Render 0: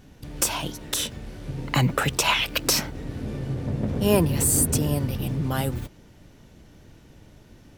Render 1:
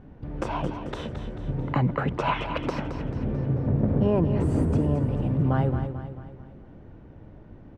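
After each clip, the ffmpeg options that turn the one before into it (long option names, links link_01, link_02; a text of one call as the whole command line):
ffmpeg -i in.wav -filter_complex "[0:a]lowpass=1200,alimiter=limit=-16.5dB:level=0:latency=1:release=372,asplit=2[link_01][link_02];[link_02]aecho=0:1:220|440|660|880|1100:0.355|0.17|0.0817|0.0392|0.0188[link_03];[link_01][link_03]amix=inputs=2:normalize=0,volume=3dB" out.wav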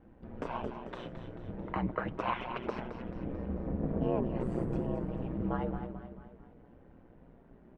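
ffmpeg -i in.wav -af "bass=frequency=250:gain=-5,treble=frequency=4000:gain=-11,aeval=exprs='val(0)*sin(2*PI*61*n/s)':channel_layout=same,flanger=delay=3.8:depth=2.8:regen=-56:speed=0.29:shape=sinusoidal" out.wav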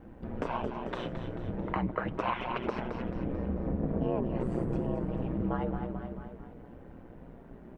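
ffmpeg -i in.wav -af "acompressor=threshold=-40dB:ratio=2,volume=8dB" out.wav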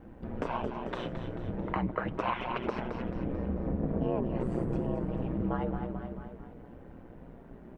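ffmpeg -i in.wav -af anull out.wav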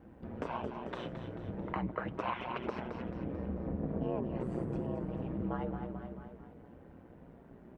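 ffmpeg -i in.wav -af "highpass=52,volume=-4.5dB" out.wav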